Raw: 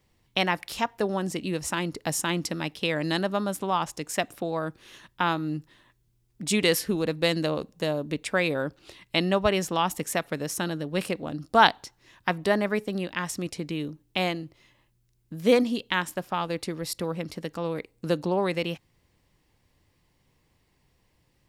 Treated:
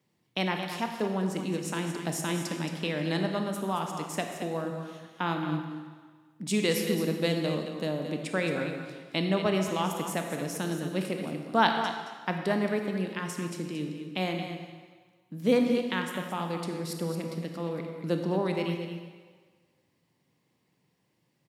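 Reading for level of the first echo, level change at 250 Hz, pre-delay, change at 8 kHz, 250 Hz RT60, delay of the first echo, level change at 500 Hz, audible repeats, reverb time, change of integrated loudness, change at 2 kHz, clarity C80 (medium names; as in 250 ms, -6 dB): -9.5 dB, -0.5 dB, 23 ms, -5.5 dB, 1.5 s, 223 ms, -3.0 dB, 1, 1.5 s, -3.0 dB, -5.0 dB, 4.5 dB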